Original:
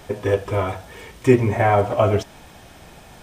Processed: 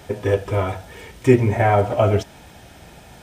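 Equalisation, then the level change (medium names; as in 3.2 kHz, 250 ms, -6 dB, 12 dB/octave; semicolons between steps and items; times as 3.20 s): high-pass 55 Hz; bass shelf 83 Hz +6.5 dB; band-stop 1.1 kHz, Q 9.6; 0.0 dB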